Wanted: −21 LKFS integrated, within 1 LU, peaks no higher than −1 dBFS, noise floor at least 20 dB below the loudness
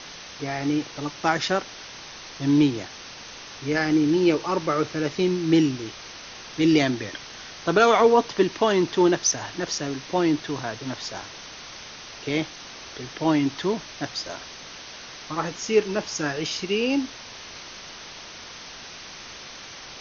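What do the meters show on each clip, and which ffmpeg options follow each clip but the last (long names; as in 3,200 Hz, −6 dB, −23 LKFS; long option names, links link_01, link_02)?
background noise floor −41 dBFS; target noise floor −44 dBFS; integrated loudness −24.0 LKFS; sample peak −5.0 dBFS; target loudness −21.0 LKFS
→ -af "afftdn=noise_reduction=6:noise_floor=-41"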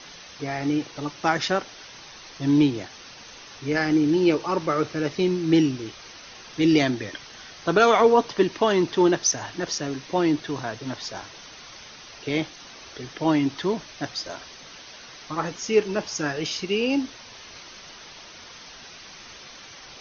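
background noise floor −45 dBFS; integrated loudness −24.0 LKFS; sample peak −5.0 dBFS; target loudness −21.0 LKFS
→ -af "volume=3dB"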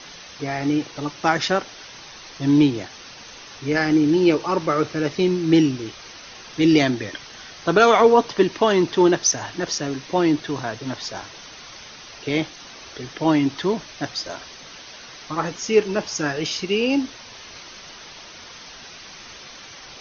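integrated loudness −21.0 LKFS; sample peak −2.0 dBFS; background noise floor −42 dBFS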